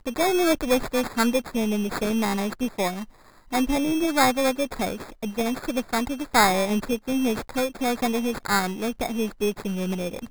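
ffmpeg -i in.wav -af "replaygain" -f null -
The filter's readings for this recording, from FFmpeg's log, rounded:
track_gain = +4.6 dB
track_peak = 0.346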